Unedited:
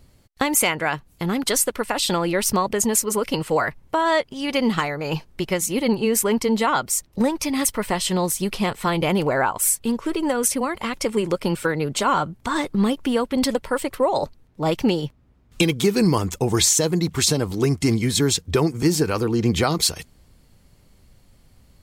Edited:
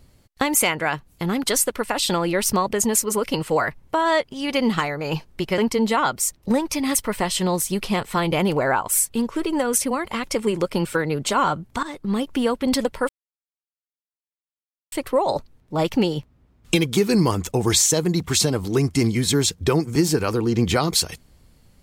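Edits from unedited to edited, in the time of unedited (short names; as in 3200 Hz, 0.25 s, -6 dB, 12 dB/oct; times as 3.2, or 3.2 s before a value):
5.58–6.28 cut
12.53–13.07 fade in, from -13.5 dB
13.79 insert silence 1.83 s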